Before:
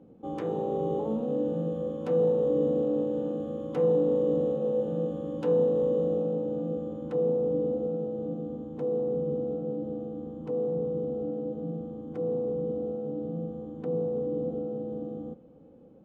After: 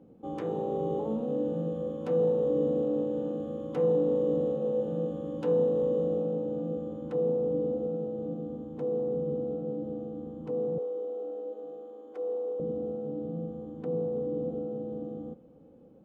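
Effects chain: 10.78–12.60 s: high-pass 400 Hz 24 dB/octave; trim -1.5 dB

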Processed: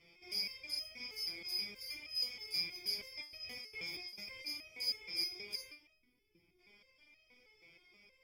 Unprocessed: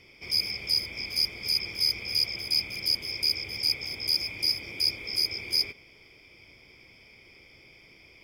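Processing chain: 2.98–4.46 s: compressor with a negative ratio -37 dBFS, ratio -1; 5.93–6.59 s: time-frequency box 410–10000 Hz -13 dB; resonator arpeggio 6.3 Hz 170–630 Hz; trim +2.5 dB

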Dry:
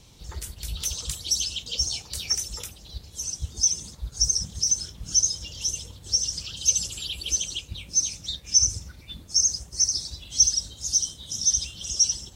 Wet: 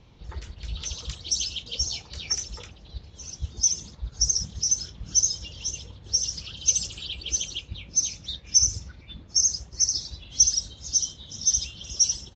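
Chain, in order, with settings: level-controlled noise filter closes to 2.4 kHz, open at -17 dBFS; resampled via 16 kHz

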